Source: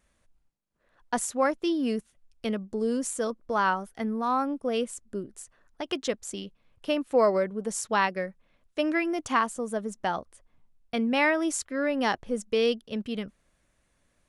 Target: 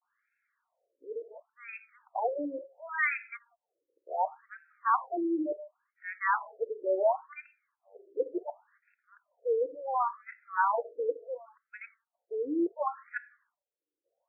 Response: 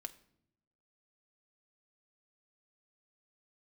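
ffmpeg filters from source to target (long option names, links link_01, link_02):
-filter_complex "[0:a]areverse[link_01];[1:a]atrim=start_sample=2205,afade=type=out:start_time=0.24:duration=0.01,atrim=end_sample=11025[link_02];[link_01][link_02]afir=irnorm=-1:irlink=0,afftfilt=real='re*between(b*sr/1024,390*pow(1900/390,0.5+0.5*sin(2*PI*0.7*pts/sr))/1.41,390*pow(1900/390,0.5+0.5*sin(2*PI*0.7*pts/sr))*1.41)':imag='im*between(b*sr/1024,390*pow(1900/390,0.5+0.5*sin(2*PI*0.7*pts/sr))/1.41,390*pow(1900/390,0.5+0.5*sin(2*PI*0.7*pts/sr))*1.41)':win_size=1024:overlap=0.75,volume=3.5dB"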